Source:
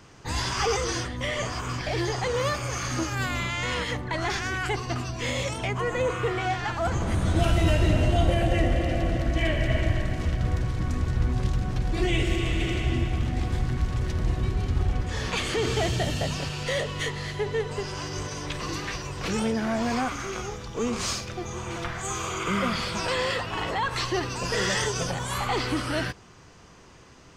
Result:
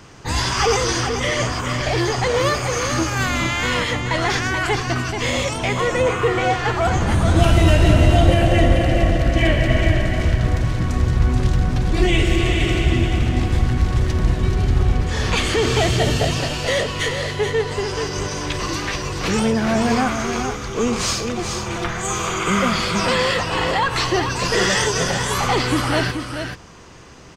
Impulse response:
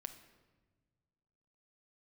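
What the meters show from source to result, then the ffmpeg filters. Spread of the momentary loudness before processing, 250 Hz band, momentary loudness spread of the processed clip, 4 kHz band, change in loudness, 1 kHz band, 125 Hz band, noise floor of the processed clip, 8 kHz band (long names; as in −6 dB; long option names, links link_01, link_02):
7 LU, +8.5 dB, 7 LU, +8.5 dB, +8.0 dB, +8.5 dB, +8.0 dB, −29 dBFS, +8.5 dB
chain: -af "aecho=1:1:431:0.447,volume=7.5dB"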